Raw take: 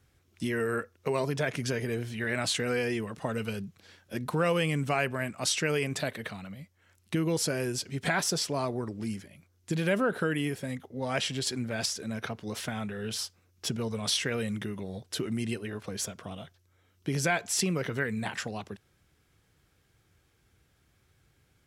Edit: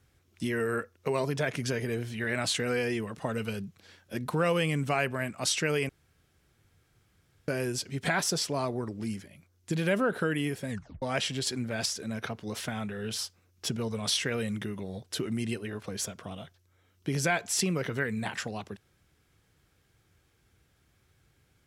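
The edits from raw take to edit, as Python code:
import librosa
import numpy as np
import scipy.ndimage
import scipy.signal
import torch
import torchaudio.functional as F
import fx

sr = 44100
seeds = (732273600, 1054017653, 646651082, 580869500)

y = fx.edit(x, sr, fx.room_tone_fill(start_s=5.89, length_s=1.59),
    fx.tape_stop(start_s=10.7, length_s=0.32), tone=tone)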